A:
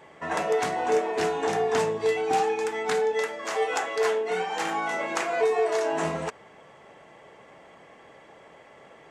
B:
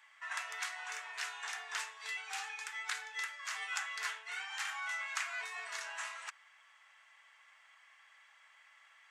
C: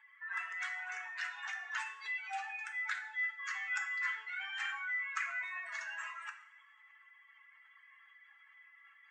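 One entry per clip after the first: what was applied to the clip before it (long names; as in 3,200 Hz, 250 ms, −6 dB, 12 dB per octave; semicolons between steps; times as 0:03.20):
high-pass filter 1,300 Hz 24 dB per octave; level −5.5 dB
expanding power law on the bin magnitudes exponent 2.2; coupled-rooms reverb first 0.53 s, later 1.6 s, from −17 dB, DRR 5 dB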